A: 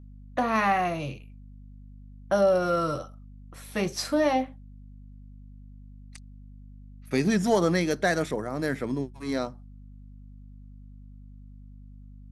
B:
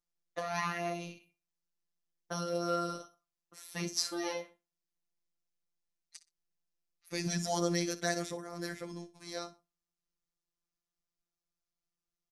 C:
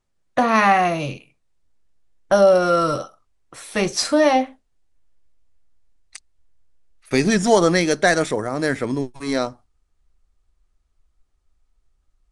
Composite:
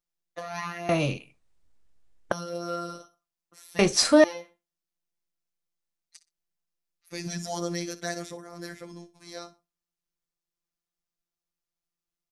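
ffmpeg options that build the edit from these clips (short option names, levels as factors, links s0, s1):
-filter_complex "[2:a]asplit=2[s0][s1];[1:a]asplit=3[s2][s3][s4];[s2]atrim=end=0.892[s5];[s0]atrim=start=0.888:end=2.322[s6];[s3]atrim=start=2.318:end=3.792[s7];[s1]atrim=start=3.788:end=4.242[s8];[s4]atrim=start=4.238[s9];[s5][s6]acrossfade=d=0.004:c1=hsin:c2=hsin[s10];[s10][s7]acrossfade=d=0.004:c1=hsin:c2=hsin[s11];[s11][s8]acrossfade=d=0.004:c1=hsin:c2=hsin[s12];[s12][s9]acrossfade=d=0.004:c1=hsin:c2=hsin"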